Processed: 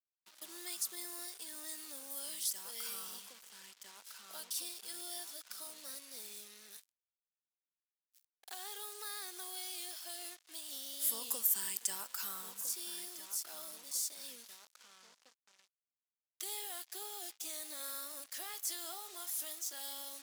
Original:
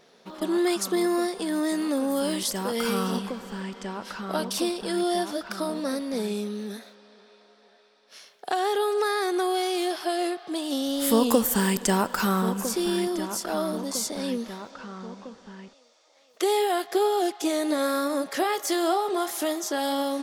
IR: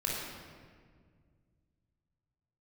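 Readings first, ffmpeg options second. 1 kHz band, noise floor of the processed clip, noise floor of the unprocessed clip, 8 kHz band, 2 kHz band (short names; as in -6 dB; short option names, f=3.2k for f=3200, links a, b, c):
-24.5 dB, under -85 dBFS, -59 dBFS, -5.5 dB, -18.5 dB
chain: -af "acrusher=bits=5:mix=0:aa=0.5,aderivative,volume=-7dB"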